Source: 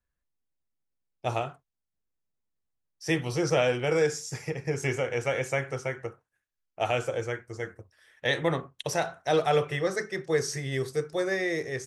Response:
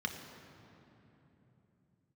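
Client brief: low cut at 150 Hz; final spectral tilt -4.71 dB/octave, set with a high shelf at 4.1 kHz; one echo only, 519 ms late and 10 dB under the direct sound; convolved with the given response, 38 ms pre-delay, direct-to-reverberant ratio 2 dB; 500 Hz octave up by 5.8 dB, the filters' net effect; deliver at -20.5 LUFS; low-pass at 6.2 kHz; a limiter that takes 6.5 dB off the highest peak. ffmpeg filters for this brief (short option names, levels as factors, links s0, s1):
-filter_complex "[0:a]highpass=150,lowpass=6200,equalizer=f=500:t=o:g=6.5,highshelf=f=4100:g=4.5,alimiter=limit=0.178:level=0:latency=1,aecho=1:1:519:0.316,asplit=2[s0][s1];[1:a]atrim=start_sample=2205,adelay=38[s2];[s1][s2]afir=irnorm=-1:irlink=0,volume=0.531[s3];[s0][s3]amix=inputs=2:normalize=0,volume=1.68"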